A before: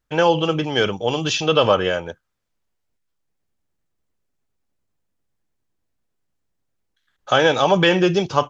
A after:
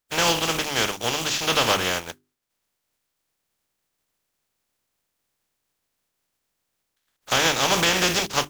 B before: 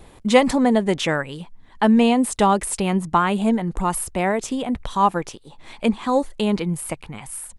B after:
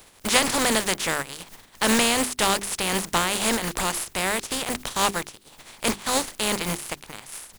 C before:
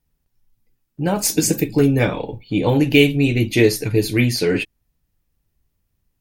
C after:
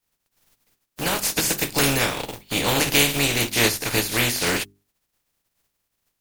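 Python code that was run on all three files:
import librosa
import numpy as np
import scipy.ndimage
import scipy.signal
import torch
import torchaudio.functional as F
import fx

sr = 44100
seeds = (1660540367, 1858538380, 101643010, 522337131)

p1 = fx.spec_flatten(x, sr, power=0.34)
p2 = fx.hum_notches(p1, sr, base_hz=50, count=8)
p3 = fx.fuzz(p2, sr, gain_db=31.0, gate_db=-27.0)
p4 = p2 + (p3 * librosa.db_to_amplitude(-9.0))
y = p4 * librosa.db_to_amplitude(-7.0)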